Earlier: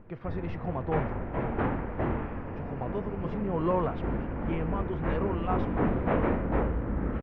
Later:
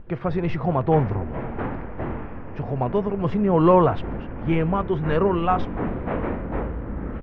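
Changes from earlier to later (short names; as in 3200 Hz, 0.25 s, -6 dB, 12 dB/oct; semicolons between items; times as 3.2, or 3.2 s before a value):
speech +12.0 dB; second sound: entry -2.05 s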